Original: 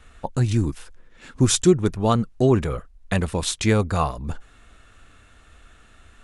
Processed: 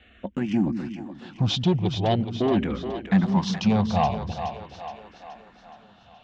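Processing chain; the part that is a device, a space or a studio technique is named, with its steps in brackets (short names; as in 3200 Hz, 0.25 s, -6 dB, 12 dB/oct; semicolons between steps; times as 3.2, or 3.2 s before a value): 3.29–3.76 ripple EQ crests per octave 0.8, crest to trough 10 dB; barber-pole phaser into a guitar amplifier (endless phaser -0.43 Hz; soft clip -18.5 dBFS, distortion -11 dB; speaker cabinet 82–4200 Hz, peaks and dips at 83 Hz -4 dB, 200 Hz +9 dB, 440 Hz -6 dB, 750 Hz +8 dB, 1300 Hz -7 dB, 3000 Hz +5 dB); split-band echo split 320 Hz, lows 0.159 s, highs 0.422 s, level -8 dB; gain +2 dB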